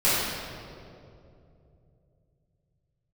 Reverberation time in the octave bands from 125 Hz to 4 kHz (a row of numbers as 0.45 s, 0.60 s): 4.7 s, 3.3 s, 3.2 s, 2.2 s, 1.7 s, 1.5 s